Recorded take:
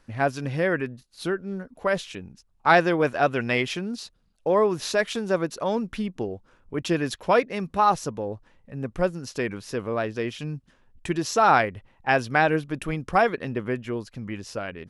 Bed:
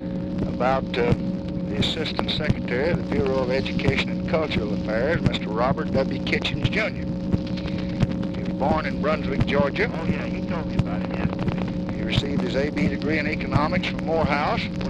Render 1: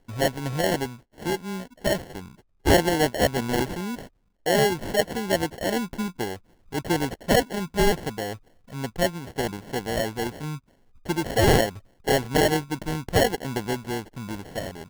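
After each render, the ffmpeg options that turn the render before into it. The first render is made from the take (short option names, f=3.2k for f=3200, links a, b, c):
-af "acrusher=samples=36:mix=1:aa=0.000001"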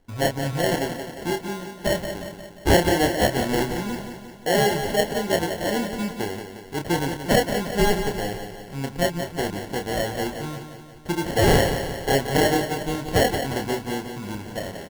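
-filter_complex "[0:a]asplit=2[a][b];[b]adelay=29,volume=-6.5dB[c];[a][c]amix=inputs=2:normalize=0,aecho=1:1:177|354|531|708|885|1062|1239:0.376|0.21|0.118|0.066|0.037|0.0207|0.0116"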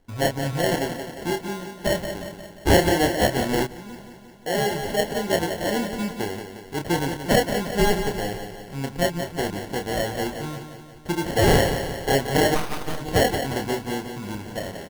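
-filter_complex "[0:a]asettb=1/sr,asplit=3[a][b][c];[a]atrim=end=2.394[d];[b]atrim=start=2.39:end=2.89,asetpts=PTS-STARTPTS,afade=t=in:d=0.004:c=qsin,afade=t=out:st=0.496:d=0.004:c=qsin,asplit=2[e][f];[f]adelay=42,volume=-9.5dB[g];[e][g]amix=inputs=2:normalize=0,atrim=end_sample=22050[h];[c]atrim=start=2.886[i];[d][h]acrossfade=d=0.004:c1=hsin:c2=qsin[j];[j][i]acrossfade=d=0.004:c1=qsin:c2=hsin,asplit=3[k][l][m];[k]afade=t=out:st=12.54:d=0.02[n];[l]aeval=exprs='abs(val(0))':c=same,afade=t=in:st=12.54:d=0.02,afade=t=out:st=12.99:d=0.02[o];[m]afade=t=in:st=12.99:d=0.02[p];[n][o][p]amix=inputs=3:normalize=0,asplit=2[q][r];[q]atrim=end=3.67,asetpts=PTS-STARTPTS,afade=t=out:st=3.666:d=0.004:c=hsin:silence=0.223872[s];[r]atrim=start=3.67,asetpts=PTS-STARTPTS,afade=t=in:d=1.69:silence=0.223872[t];[s][t]concat=n=2:v=0:a=1"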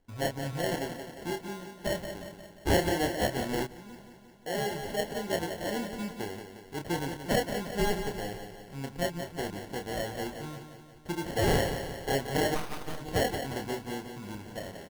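-af "volume=-8.5dB"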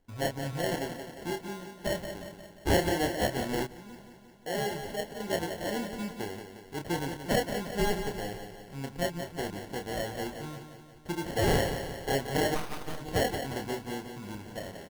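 -filter_complex "[0:a]asplit=2[a][b];[a]atrim=end=5.2,asetpts=PTS-STARTPTS,afade=t=out:st=4.72:d=0.48:silence=0.446684[c];[b]atrim=start=5.2,asetpts=PTS-STARTPTS,afade=t=in:d=0.004:c=hsin:silence=0.446684[d];[c][d]concat=n=2:v=0:a=1"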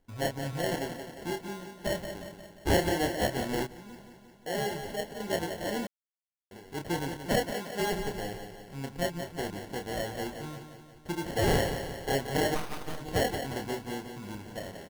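-filter_complex "[0:a]asettb=1/sr,asplit=3[a][b][c];[a]atrim=end=7.514[d];[b]atrim=start=7.51:end=7.92,asetpts=PTS-STARTPTS,afade=t=in:d=0.004:c=qsin,afade=t=out:st=0.406:d=0.004:c=qsin,highpass=f=270:p=1[e];[c]atrim=start=7.916[f];[d][e]acrossfade=d=0.004:c1=hsin:c2=qsin[g];[g][f]acrossfade=d=0.004:c1=qsin:c2=hsin,asplit=3[h][i][j];[h]atrim=end=5.87,asetpts=PTS-STARTPTS,afade=t=out:st=5.866:d=0.004:c=hsin[k];[i]atrim=start=5.87:end=6.51,asetpts=PTS-STARTPTS,volume=0[l];[j]atrim=start=6.51,asetpts=PTS-STARTPTS,afade=t=in:d=0.004:c=hsin[m];[k][l][m]concat=n=3:v=0:a=1"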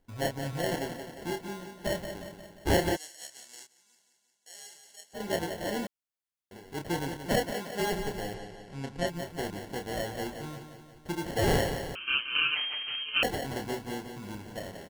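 -filter_complex "[0:a]asplit=3[a][b][c];[a]afade=t=out:st=2.95:d=0.02[d];[b]bandpass=f=7.3k:t=q:w=1.9,afade=t=in:st=2.95:d=0.02,afade=t=out:st=5.13:d=0.02[e];[c]afade=t=in:st=5.13:d=0.02[f];[d][e][f]amix=inputs=3:normalize=0,asettb=1/sr,asplit=3[g][h][i];[g]atrim=end=8.344[j];[h]atrim=start=8.34:end=9.07,asetpts=PTS-STARTPTS,afade=t=in:d=0.004:c=qsin,afade=t=out:st=0.726:d=0.004:c=qsin,lowpass=8.1k[k];[i]atrim=start=9.066[l];[j][k]acrossfade=d=0.004:c1=hsin:c2=qsin[m];[m][l]acrossfade=d=0.004:c1=qsin:c2=hsin,asettb=1/sr,asplit=3[n][o][p];[n]atrim=end=11.954[q];[o]atrim=start=11.95:end=13.23,asetpts=PTS-STARTPTS,afade=t=in:d=0.004:c=qsin,afade=t=out:st=1.276:d=0.004:c=qsin,lowpass=f=2.7k:t=q:w=0.5098,lowpass=f=2.7k:t=q:w=0.6013,lowpass=f=2.7k:t=q:w=0.9,lowpass=f=2.7k:t=q:w=2.563,afreqshift=-3200[r];[p]atrim=start=13.226[s];[q][r]acrossfade=d=0.004:c1=hsin:c2=qsin[t];[t][s]acrossfade=d=0.004:c1=qsin:c2=hsin"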